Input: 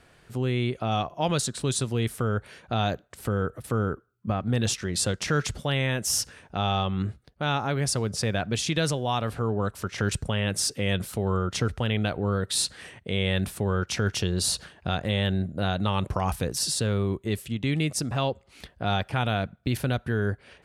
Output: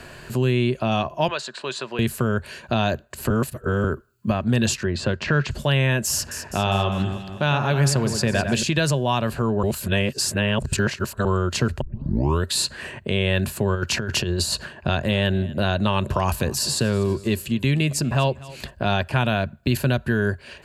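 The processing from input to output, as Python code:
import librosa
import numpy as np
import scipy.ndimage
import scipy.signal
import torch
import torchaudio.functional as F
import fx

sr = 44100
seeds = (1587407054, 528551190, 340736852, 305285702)

y = fx.bandpass_edges(x, sr, low_hz=660.0, high_hz=3000.0, at=(1.28, 1.99))
y = fx.lowpass(y, sr, hz=2800.0, slope=12, at=(4.83, 5.51))
y = fx.echo_alternate(y, sr, ms=101, hz=2200.0, feedback_pct=63, wet_db=-7, at=(6.11, 8.63))
y = fx.over_compress(y, sr, threshold_db=-28.0, ratio=-0.5, at=(13.74, 14.52), fade=0.02)
y = fx.echo_feedback(y, sr, ms=240, feedback_pct=41, wet_db=-22.0, at=(15.08, 18.69), fade=0.02)
y = fx.edit(y, sr, fx.reverse_span(start_s=3.3, length_s=0.54),
    fx.reverse_span(start_s=9.63, length_s=1.62),
    fx.tape_start(start_s=11.81, length_s=0.64), tone=tone)
y = fx.ripple_eq(y, sr, per_octave=1.4, db=7)
y = fx.band_squash(y, sr, depth_pct=40)
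y = F.gain(torch.from_numpy(y), 4.5).numpy()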